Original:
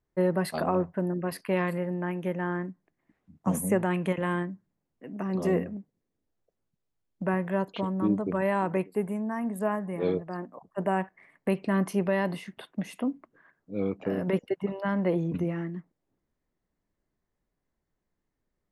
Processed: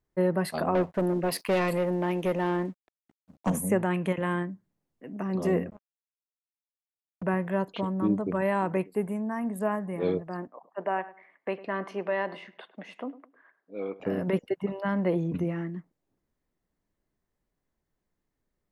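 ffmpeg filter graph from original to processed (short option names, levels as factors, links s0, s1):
-filter_complex "[0:a]asettb=1/sr,asplit=3[s0][s1][s2];[s0]atrim=end=0.754[s3];[s1]atrim=start=0.75:end=3.5,asetpts=PTS-STARTPTS,afade=t=in:d=0.004:c=qsin,afade=t=out:st=2.746:d=0.004:c=qsin,equalizer=f=1500:w=1.4:g=-13,asplit=2[s4][s5];[s5]highpass=f=720:p=1,volume=10,asoftclip=type=tanh:threshold=0.15[s6];[s4][s6]amix=inputs=2:normalize=0,lowpass=f=6500:p=1,volume=0.501,aeval=exprs='sgn(val(0))*max(abs(val(0))-0.00158,0)':c=same[s7];[s2]atrim=start=3.496[s8];[s3][s7]acrossfade=d=0.004:c1=hsin:c2=qsin[s9];[s9][s8]acrossfade=d=0.004:c1=qsin:c2=hsin,asettb=1/sr,asplit=3[s10][s11][s12];[s10]atrim=end=5.704[s13];[s11]atrim=start=5.7:end=7.23,asetpts=PTS-STARTPTS,afade=t=in:d=0.004:c=qsin,afade=t=out:st=1.526:d=0.004:c=qsin,equalizer=f=340:t=o:w=2.9:g=-7.5,acrusher=bits=5:mix=0:aa=0.5[s14];[s12]atrim=start=7.226[s15];[s13][s14]acrossfade=d=0.004:c1=hsin:c2=qsin[s16];[s16][s15]acrossfade=d=0.004:c1=qsin:c2=hsin,asettb=1/sr,asplit=3[s17][s18][s19];[s17]atrim=end=10.474[s20];[s18]atrim=start=10.47:end=14,asetpts=PTS-STARTPTS,afade=t=in:d=0.004:c=qsin,afade=t=out:st=3.526:d=0.004:c=qsin,highpass=420,lowpass=3200,asplit=2[s21][s22];[s22]adelay=103,lowpass=f=2100:p=1,volume=0.15,asplit=2[s23][s24];[s24]adelay=103,lowpass=f=2100:p=1,volume=0.27,asplit=2[s25][s26];[s26]adelay=103,lowpass=f=2100:p=1,volume=0.27[s27];[s21][s23][s25][s27]amix=inputs=4:normalize=0,atrim=end_sample=155673[s28];[s19]atrim=start=13.996[s29];[s20][s28]acrossfade=d=0.004:c1=hsin:c2=qsin[s30];[s30][s29]acrossfade=d=0.004:c1=qsin:c2=hsin"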